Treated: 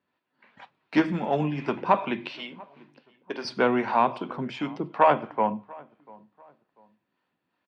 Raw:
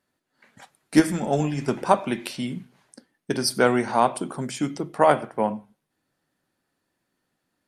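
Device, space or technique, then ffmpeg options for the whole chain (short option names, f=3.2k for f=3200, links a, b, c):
guitar amplifier with harmonic tremolo: -filter_complex "[0:a]acrossover=split=450[a][b];[a]aeval=exprs='val(0)*(1-0.5/2+0.5/2*cos(2*PI*2.7*n/s))':c=same[c];[b]aeval=exprs='val(0)*(1-0.5/2-0.5/2*cos(2*PI*2.7*n/s))':c=same[d];[c][d]amix=inputs=2:normalize=0,asoftclip=type=tanh:threshold=-10.5dB,highpass=84,equalizer=f=130:t=q:w=4:g=-3,equalizer=f=1k:t=q:w=4:g=7,equalizer=f=2.6k:t=q:w=4:g=5,lowpass=f=3.9k:w=0.5412,lowpass=f=3.9k:w=1.3066,asettb=1/sr,asplit=3[e][f][g];[e]atrim=end=2.294[h];[f]atrim=start=2.29:end=3.45,asetpts=PTS-STARTPTS,afade=t=in:d=0.004:c=qsin,afade=t=out:st=1.156:d=0.004:c=qsin,highpass=470[i];[g]atrim=start=3.446[j];[h][i]acrossfade=d=0.004:c1=hsin:c2=qsin[k];[k][j]acrossfade=d=0.004:c1=qsin:c2=hsin,bandreject=f=60:t=h:w=6,bandreject=f=120:t=h:w=6,asplit=2[l][m];[m]adelay=692,lowpass=f=2k:p=1,volume=-23.5dB,asplit=2[n][o];[o]adelay=692,lowpass=f=2k:p=1,volume=0.33[p];[l][n][p]amix=inputs=3:normalize=0"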